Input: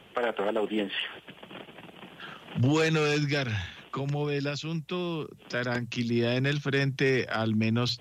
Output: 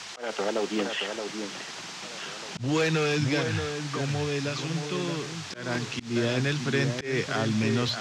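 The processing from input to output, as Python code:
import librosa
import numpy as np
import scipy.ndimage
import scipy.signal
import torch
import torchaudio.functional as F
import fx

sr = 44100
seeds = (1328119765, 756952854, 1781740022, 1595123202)

y = fx.dmg_noise_band(x, sr, seeds[0], low_hz=680.0, high_hz=6500.0, level_db=-41.0)
y = fx.echo_alternate(y, sr, ms=623, hz=1900.0, feedback_pct=50, wet_db=-6.5)
y = fx.auto_swell(y, sr, attack_ms=177.0)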